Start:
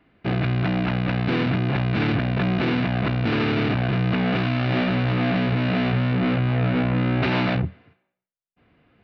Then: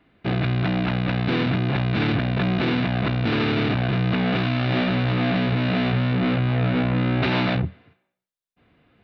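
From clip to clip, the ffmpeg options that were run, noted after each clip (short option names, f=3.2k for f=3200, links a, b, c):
-af "equalizer=f=3.7k:w=4.2:g=5"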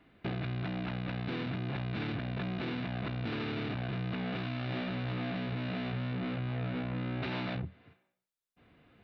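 -af "acompressor=threshold=-34dB:ratio=3,volume=-2.5dB"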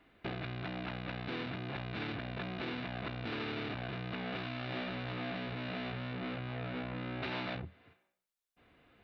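-af "equalizer=f=150:t=o:w=1.8:g=-7.5"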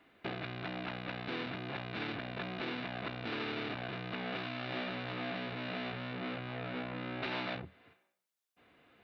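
-af "highpass=f=190:p=1,volume=1.5dB"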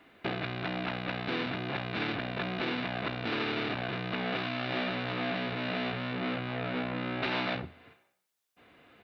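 -af "aecho=1:1:60|120|180|240:0.119|0.0559|0.0263|0.0123,volume=6dB"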